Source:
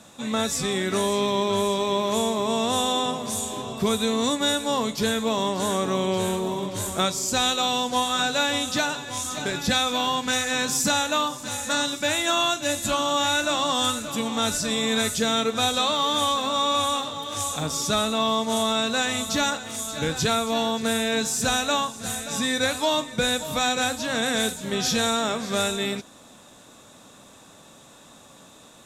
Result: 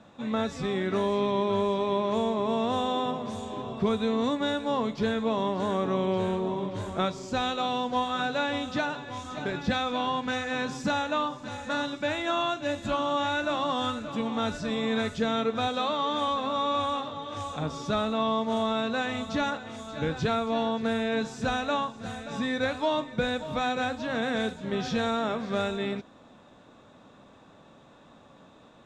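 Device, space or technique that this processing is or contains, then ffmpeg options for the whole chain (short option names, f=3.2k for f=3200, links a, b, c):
phone in a pocket: -filter_complex "[0:a]lowpass=3.9k,highshelf=f=2.3k:g=-9,asettb=1/sr,asplit=3[a][b][c];[a]atrim=end=15.674[d];[b]atrim=start=15.67:end=16.28,asetpts=PTS-STARTPTS,afade=t=in:d=0.004:c=qsin,afade=t=out:st=0.606:d=0.004:c=qsin,highpass=140[e];[c]atrim=start=16.276[f];[d][e]acrossfade=d=0.004:c1=hsin:c2=qsin[g];[g][f]acrossfade=d=0.004:c1=qsin:c2=hsin,volume=-2dB"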